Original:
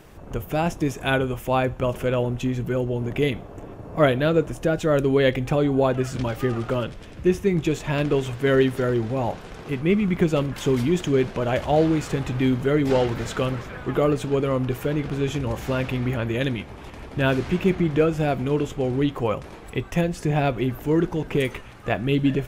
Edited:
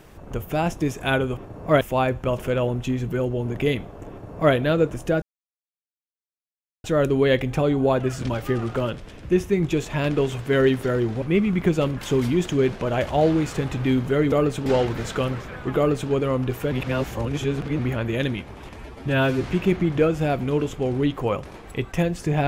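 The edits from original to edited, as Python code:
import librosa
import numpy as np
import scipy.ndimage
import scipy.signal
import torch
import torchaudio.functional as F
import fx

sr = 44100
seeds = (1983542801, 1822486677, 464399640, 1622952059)

y = fx.edit(x, sr, fx.duplicate(start_s=3.66, length_s=0.44, to_s=1.37),
    fx.insert_silence(at_s=4.78, length_s=1.62),
    fx.cut(start_s=9.16, length_s=0.61),
    fx.duplicate(start_s=13.98, length_s=0.34, to_s=12.87),
    fx.reverse_span(start_s=14.93, length_s=1.07),
    fx.stretch_span(start_s=16.97, length_s=0.45, factor=1.5), tone=tone)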